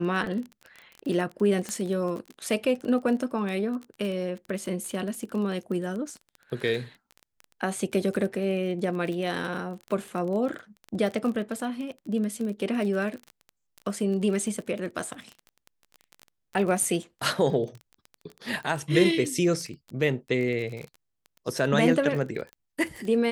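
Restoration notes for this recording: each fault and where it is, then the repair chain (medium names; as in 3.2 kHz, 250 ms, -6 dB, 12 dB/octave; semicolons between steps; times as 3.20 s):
crackle 23 per s -32 dBFS
1.69 s: pop -17 dBFS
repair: de-click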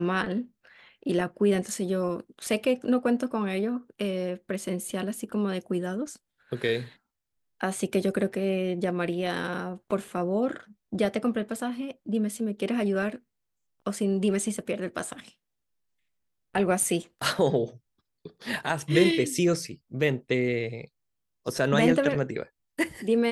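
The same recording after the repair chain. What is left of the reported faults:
1.69 s: pop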